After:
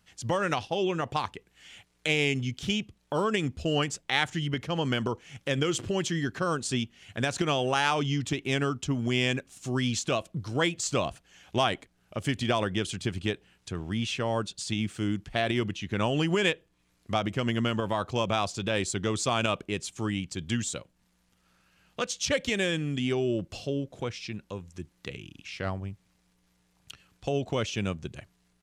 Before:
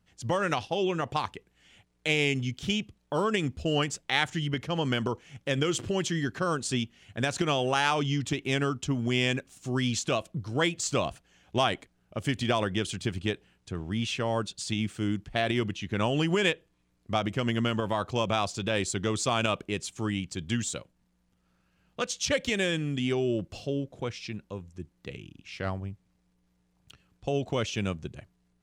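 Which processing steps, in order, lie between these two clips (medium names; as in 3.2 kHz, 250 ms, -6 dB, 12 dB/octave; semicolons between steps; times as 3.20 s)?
resampled via 32 kHz; tape noise reduction on one side only encoder only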